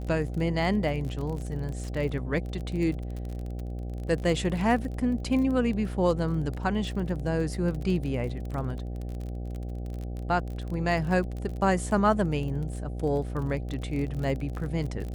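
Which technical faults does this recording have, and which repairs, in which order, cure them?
buzz 60 Hz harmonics 13 -34 dBFS
crackle 30/s -33 dBFS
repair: de-click; de-hum 60 Hz, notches 13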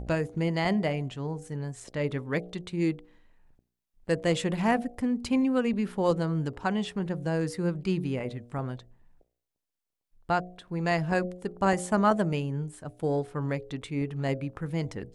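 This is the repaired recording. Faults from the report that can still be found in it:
none

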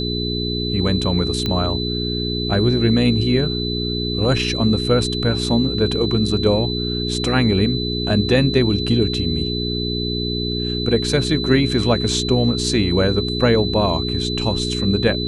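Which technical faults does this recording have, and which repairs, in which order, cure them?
hum 60 Hz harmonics 7 -24 dBFS
tone 4000 Hz -25 dBFS
1.46 pop -9 dBFS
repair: de-click; notch 4000 Hz, Q 30; de-hum 60 Hz, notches 7

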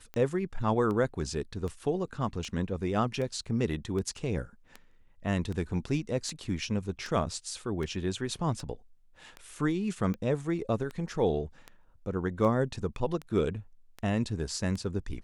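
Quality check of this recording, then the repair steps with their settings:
tick 78 rpm -25 dBFS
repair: de-click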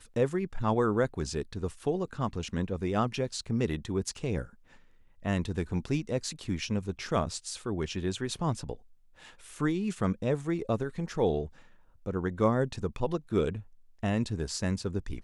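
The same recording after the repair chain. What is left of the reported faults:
none

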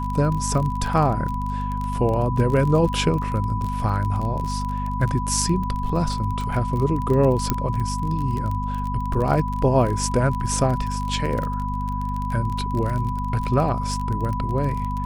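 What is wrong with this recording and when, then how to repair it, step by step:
crackle 28/s -26 dBFS
hum 50 Hz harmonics 5 -27 dBFS
tone 990 Hz -28 dBFS
7.5 pop -6 dBFS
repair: de-click; notch 990 Hz, Q 30; de-hum 50 Hz, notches 5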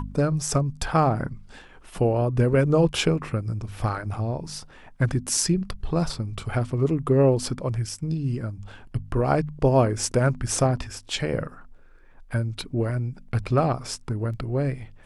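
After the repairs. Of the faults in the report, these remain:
none

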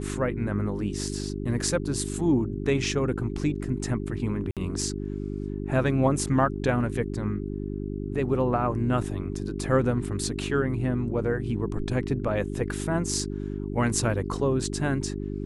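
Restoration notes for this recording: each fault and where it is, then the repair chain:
hum 50 Hz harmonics 8 -32 dBFS
4.51–4.57 gap 57 ms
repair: de-hum 50 Hz, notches 8; interpolate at 4.51, 57 ms

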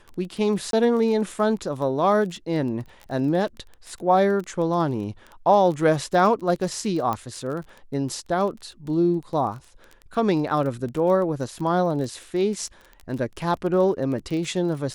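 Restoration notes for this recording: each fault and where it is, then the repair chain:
crackle 20/s -31 dBFS
0.71–0.73 gap 22 ms
7.13 pop -14 dBFS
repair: de-click; interpolate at 0.71, 22 ms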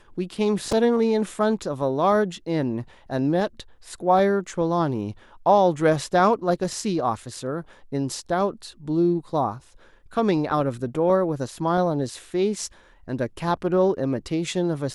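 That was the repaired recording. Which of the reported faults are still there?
none

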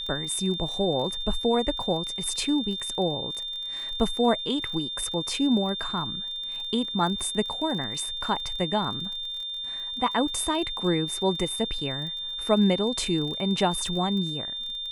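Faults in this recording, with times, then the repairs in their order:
crackle 31/s -34 dBFS
tone 3600 Hz -31 dBFS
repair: de-click; notch 3600 Hz, Q 30

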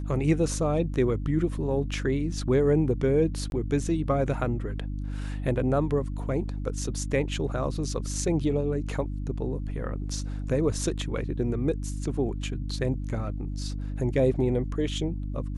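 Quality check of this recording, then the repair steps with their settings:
hum 50 Hz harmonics 6 -32 dBFS
3.5–3.52 gap 21 ms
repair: de-hum 50 Hz, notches 6; interpolate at 3.5, 21 ms

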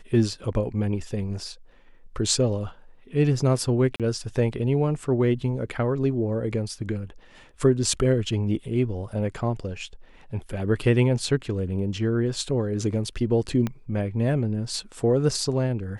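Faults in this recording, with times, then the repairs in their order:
3.96–4 gap 37 ms
13.67 pop -15 dBFS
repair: de-click; interpolate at 3.96, 37 ms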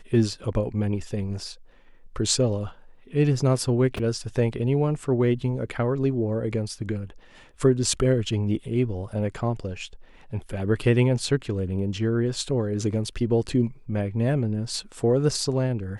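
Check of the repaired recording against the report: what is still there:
13.67 pop

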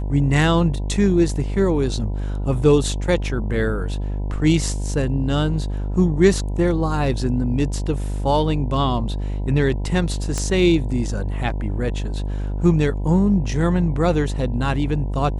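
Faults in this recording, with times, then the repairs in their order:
buzz 50 Hz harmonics 20 -24 dBFS
10.38 pop -11 dBFS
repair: de-click; de-hum 50 Hz, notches 20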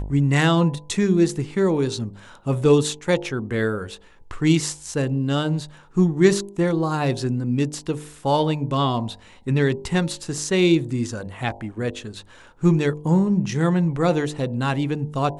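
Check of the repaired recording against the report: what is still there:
10.38 pop

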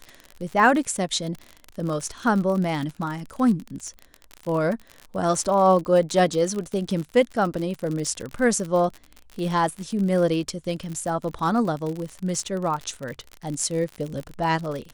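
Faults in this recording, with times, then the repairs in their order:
crackle 50/s -28 dBFS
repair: de-click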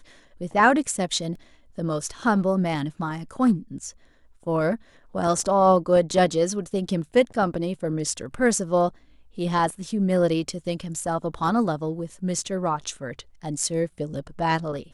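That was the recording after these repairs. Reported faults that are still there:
none

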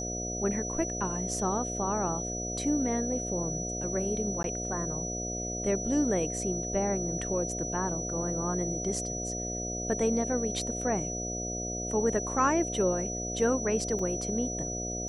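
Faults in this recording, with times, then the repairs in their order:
buzz 60 Hz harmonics 12 -37 dBFS
tone 5900 Hz -35 dBFS
4.43–4.44 gap 12 ms
13.99 gap 3.8 ms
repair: de-hum 60 Hz, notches 12; notch 5900 Hz, Q 30; interpolate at 4.43, 12 ms; interpolate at 13.99, 3.8 ms

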